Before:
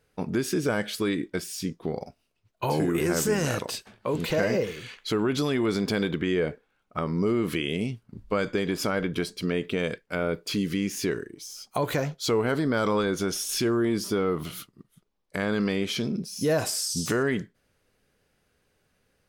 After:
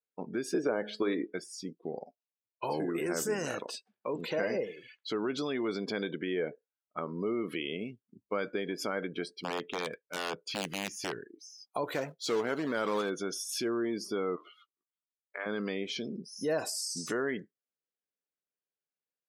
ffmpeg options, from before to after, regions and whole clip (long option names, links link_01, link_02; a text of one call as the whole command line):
ffmpeg -i in.wav -filter_complex "[0:a]asettb=1/sr,asplit=3[link_01][link_02][link_03];[link_01]atrim=end=0.544[link_04];[link_02]atrim=start=0.54:end=1.33,asetpts=PTS-STARTPTS,afade=type=in:duration=0.004:curve=qsin,afade=type=out:start_time=0.786:duration=0.004:curve=qsin,equalizer=frequency=490:width=0.37:gain=10.5,acrossover=split=540|6300[link_05][link_06][link_07];[link_05]acompressor=threshold=-23dB:ratio=4[link_08];[link_06]acompressor=threshold=-27dB:ratio=4[link_09];[link_07]acompressor=threshold=-51dB:ratio=4[link_10];[link_08][link_09][link_10]amix=inputs=3:normalize=0,bandreject=frequency=212.6:width_type=h:width=4,bandreject=frequency=425.2:width_type=h:width=4,bandreject=frequency=637.8:width_type=h:width=4,bandreject=frequency=850.4:width_type=h:width=4,bandreject=frequency=1063:width_type=h:width=4,bandreject=frequency=1275.6:width_type=h:width=4,bandreject=frequency=1488.2:width_type=h:width=4,bandreject=frequency=1700.8:width_type=h:width=4,bandreject=frequency=1913.4:width_type=h:width=4,bandreject=frequency=2126:width_type=h:width=4,bandreject=frequency=2338.6:width_type=h:width=4,bandreject=frequency=2551.2:width_type=h:width=4,bandreject=frequency=2763.8:width_type=h:width=4,bandreject=frequency=2976.4:width_type=h:width=4,bandreject=frequency=3189:width_type=h:width=4,bandreject=frequency=3401.6:width_type=h:width=4,bandreject=frequency=3614.2:width_type=h:width=4,bandreject=frequency=3826.8:width_type=h:width=4,bandreject=frequency=4039.4:width_type=h:width=4,bandreject=frequency=4252:width_type=h:width=4,bandreject=frequency=4464.6:width_type=h:width=4,bandreject=frequency=4677.2:width_type=h:width=4,bandreject=frequency=4889.8:width_type=h:width=4,bandreject=frequency=5102.4:width_type=h:width=4,bandreject=frequency=5315:width_type=h:width=4,bandreject=frequency=5527.6:width_type=h:width=4,bandreject=frequency=5740.2:width_type=h:width=4,bandreject=frequency=5952.8:width_type=h:width=4,bandreject=frequency=6165.4:width_type=h:width=4,bandreject=frequency=6378:width_type=h:width=4[link_11];[link_03]atrim=start=1.326[link_12];[link_04][link_11]acrossfade=duration=0.004:curve1=hsin:curve2=qsin[link_13];[link_13][link_12]acrossfade=duration=0.004:curve1=qsin:curve2=hsin,asettb=1/sr,asplit=3[link_14][link_15][link_16];[link_14]atrim=end=9.234[link_17];[link_15]atrim=start=9.23:end=11.28,asetpts=PTS-STARTPTS,afade=type=in:duration=0.004:curve=qsin,afade=type=out:start_time=2.046:duration=0.004:curve=qsin,asubboost=boost=8.5:cutoff=120,aeval=exprs='(mod(8.91*val(0)+1,2)-1)/8.91':channel_layout=same[link_18];[link_16]atrim=start=11.276[link_19];[link_17][link_18]acrossfade=duration=0.004:curve1=hsin:curve2=qsin[link_20];[link_20][link_19]acrossfade=duration=0.004:curve1=qsin:curve2=hsin,asettb=1/sr,asplit=3[link_21][link_22][link_23];[link_21]atrim=end=11.924[link_24];[link_22]atrim=start=11.92:end=13.1,asetpts=PTS-STARTPTS,afade=type=in:duration=0.004:curve=qsin,afade=type=out:start_time=1.176:duration=0.004:curve=qsin,bandreject=frequency=50:width_type=h:width=6,bandreject=frequency=100:width_type=h:width=6,acrusher=bits=2:mode=log:mix=0:aa=0.000001[link_25];[link_23]atrim=start=13.096[link_26];[link_24][link_25]acrossfade=duration=0.004:curve1=hsin:curve2=qsin[link_27];[link_27][link_26]acrossfade=duration=0.004:curve1=qsin:curve2=hsin,asettb=1/sr,asplit=3[link_28][link_29][link_30];[link_28]atrim=end=14.364[link_31];[link_29]atrim=start=14.36:end=15.46,asetpts=PTS-STARTPTS,afade=type=in:duration=0.004:curve=qsin,afade=type=out:start_time=1.096:duration=0.004:curve=qsin,highpass=650,lowpass=3700,asplit=2[link_32][link_33];[link_33]adelay=17,volume=-7.5dB[link_34];[link_32][link_34]amix=inputs=2:normalize=0,atrim=end_sample=48510[link_35];[link_30]atrim=start=15.456[link_36];[link_31][link_35]acrossfade=duration=0.004:curve1=hsin:curve2=qsin[link_37];[link_37][link_36]acrossfade=duration=0.004:curve1=qsin:curve2=hsin,highpass=250,afftdn=noise_reduction=25:noise_floor=-39,volume=-6dB" out.wav